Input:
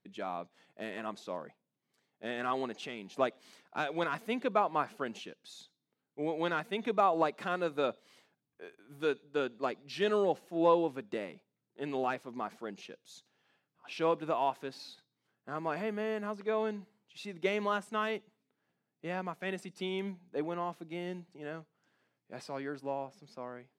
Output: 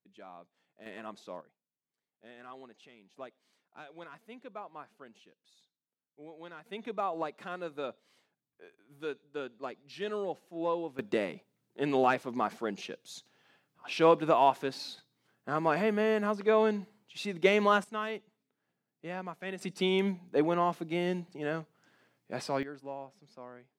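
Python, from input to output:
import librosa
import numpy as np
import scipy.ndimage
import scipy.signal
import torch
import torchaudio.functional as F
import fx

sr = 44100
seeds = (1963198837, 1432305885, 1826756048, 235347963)

y = fx.gain(x, sr, db=fx.steps((0.0, -11.5), (0.86, -4.0), (1.41, -15.0), (6.66, -6.0), (10.99, 7.0), (17.84, -2.0), (19.61, 8.0), (22.63, -4.5)))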